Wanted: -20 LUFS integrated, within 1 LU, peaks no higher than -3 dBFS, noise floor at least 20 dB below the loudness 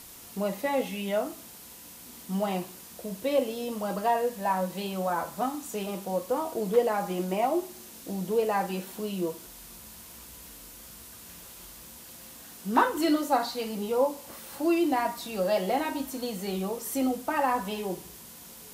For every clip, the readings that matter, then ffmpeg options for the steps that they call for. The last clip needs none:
noise floor -48 dBFS; noise floor target -50 dBFS; loudness -29.5 LUFS; peak -9.0 dBFS; loudness target -20.0 LUFS
-> -af "afftdn=nr=6:nf=-48"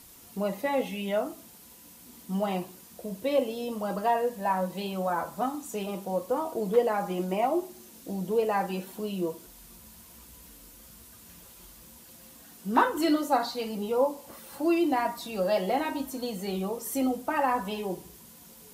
noise floor -52 dBFS; loudness -29.5 LUFS; peak -9.0 dBFS; loudness target -20.0 LUFS
-> -af "volume=9.5dB,alimiter=limit=-3dB:level=0:latency=1"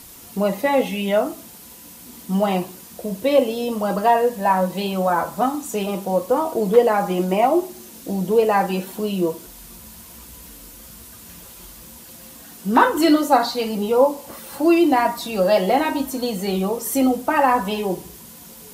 loudness -20.0 LUFS; peak -3.0 dBFS; noise floor -42 dBFS

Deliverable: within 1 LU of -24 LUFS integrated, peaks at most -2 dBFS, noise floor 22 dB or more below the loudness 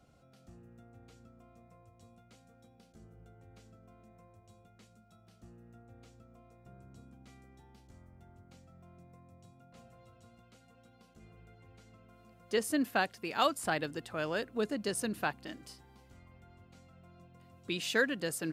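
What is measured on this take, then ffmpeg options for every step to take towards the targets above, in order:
loudness -34.0 LUFS; peak -15.0 dBFS; loudness target -24.0 LUFS
-> -af "volume=10dB"

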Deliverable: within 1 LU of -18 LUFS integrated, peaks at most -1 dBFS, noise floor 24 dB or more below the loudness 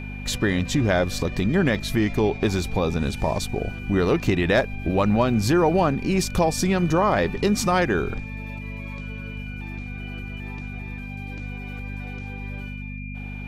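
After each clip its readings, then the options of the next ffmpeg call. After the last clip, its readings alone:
hum 50 Hz; harmonics up to 250 Hz; hum level -32 dBFS; steady tone 2400 Hz; tone level -39 dBFS; loudness -24.0 LUFS; peak -7.5 dBFS; loudness target -18.0 LUFS
-> -af "bandreject=f=50:t=h:w=4,bandreject=f=100:t=h:w=4,bandreject=f=150:t=h:w=4,bandreject=f=200:t=h:w=4,bandreject=f=250:t=h:w=4"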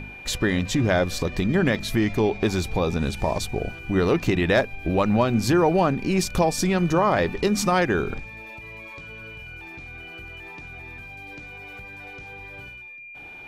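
hum none; steady tone 2400 Hz; tone level -39 dBFS
-> -af "bandreject=f=2.4k:w=30"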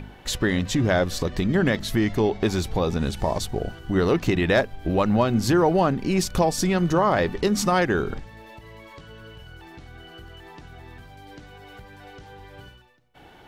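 steady tone none; loudness -23.0 LUFS; peak -7.5 dBFS; loudness target -18.0 LUFS
-> -af "volume=5dB"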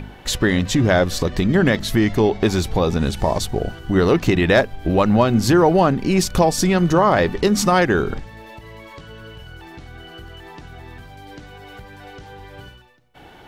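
loudness -18.0 LUFS; peak -2.5 dBFS; noise floor -44 dBFS

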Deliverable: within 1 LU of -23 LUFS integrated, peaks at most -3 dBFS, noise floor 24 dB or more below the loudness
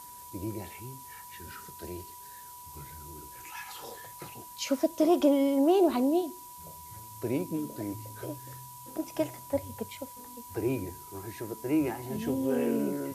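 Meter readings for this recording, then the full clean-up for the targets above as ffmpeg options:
steady tone 980 Hz; tone level -47 dBFS; noise floor -47 dBFS; noise floor target -55 dBFS; loudness -30.5 LUFS; peak -13.0 dBFS; loudness target -23.0 LUFS
-> -af "bandreject=f=980:w=30"
-af "afftdn=nr=8:nf=-47"
-af "volume=7.5dB"

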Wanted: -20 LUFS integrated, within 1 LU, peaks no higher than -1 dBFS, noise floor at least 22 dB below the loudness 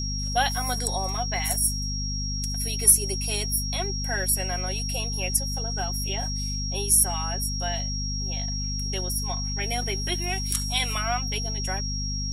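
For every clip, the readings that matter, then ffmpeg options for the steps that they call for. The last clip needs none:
hum 50 Hz; harmonics up to 250 Hz; hum level -28 dBFS; steady tone 5600 Hz; tone level -31 dBFS; loudness -25.5 LUFS; peak -4.0 dBFS; loudness target -20.0 LUFS
-> -af "bandreject=f=50:t=h:w=4,bandreject=f=100:t=h:w=4,bandreject=f=150:t=h:w=4,bandreject=f=200:t=h:w=4,bandreject=f=250:t=h:w=4"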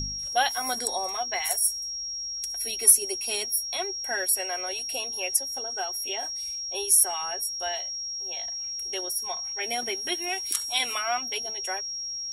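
hum none; steady tone 5600 Hz; tone level -31 dBFS
-> -af "bandreject=f=5.6k:w=30"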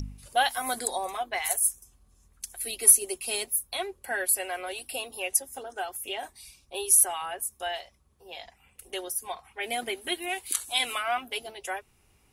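steady tone none; loudness -27.0 LUFS; peak -4.5 dBFS; loudness target -20.0 LUFS
-> -af "volume=7dB,alimiter=limit=-1dB:level=0:latency=1"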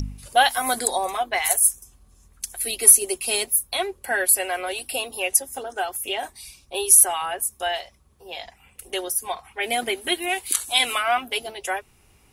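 loudness -20.5 LUFS; peak -1.0 dBFS; noise floor -57 dBFS

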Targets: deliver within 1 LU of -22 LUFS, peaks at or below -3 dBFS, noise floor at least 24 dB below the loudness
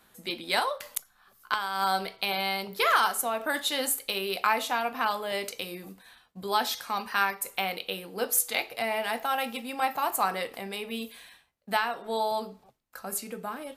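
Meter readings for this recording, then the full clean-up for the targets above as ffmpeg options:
loudness -29.0 LUFS; peak -8.0 dBFS; loudness target -22.0 LUFS
-> -af "volume=7dB,alimiter=limit=-3dB:level=0:latency=1"

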